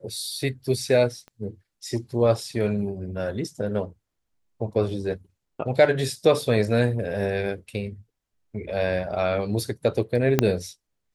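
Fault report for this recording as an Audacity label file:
1.280000	1.280000	pop -30 dBFS
10.390000	10.390000	pop -4 dBFS

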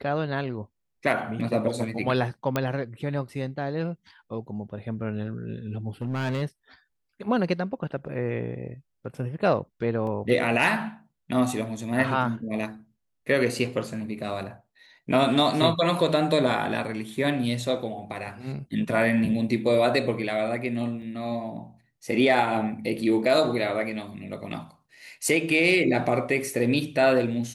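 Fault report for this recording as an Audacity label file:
2.560000	2.560000	pop -11 dBFS
6.020000	6.430000	clipped -24 dBFS
10.070000	10.070000	gap 2 ms
21.020000	21.020000	gap 4.2 ms

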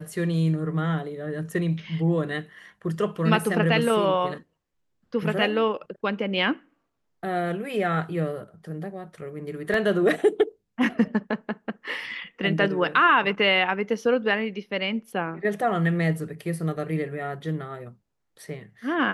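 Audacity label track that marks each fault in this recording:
9.740000	9.740000	gap 2.1 ms

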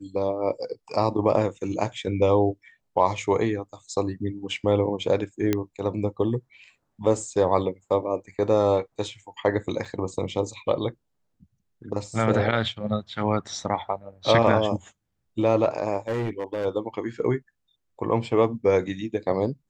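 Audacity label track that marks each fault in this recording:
5.530000	5.530000	pop -9 dBFS
9.850000	9.850000	gap 4 ms
16.080000	16.660000	clipped -23.5 dBFS

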